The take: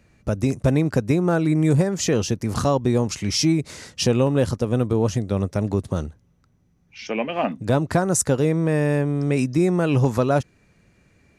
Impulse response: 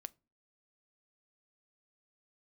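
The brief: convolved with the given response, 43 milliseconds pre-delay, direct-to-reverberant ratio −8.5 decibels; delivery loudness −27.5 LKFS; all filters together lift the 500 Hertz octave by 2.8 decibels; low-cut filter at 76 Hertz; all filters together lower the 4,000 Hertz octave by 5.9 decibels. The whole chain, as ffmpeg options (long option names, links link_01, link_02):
-filter_complex "[0:a]highpass=76,equalizer=frequency=500:width_type=o:gain=3.5,equalizer=frequency=4000:width_type=o:gain=-9,asplit=2[link_01][link_02];[1:a]atrim=start_sample=2205,adelay=43[link_03];[link_02][link_03]afir=irnorm=-1:irlink=0,volume=13.5dB[link_04];[link_01][link_04]amix=inputs=2:normalize=0,volume=-16dB"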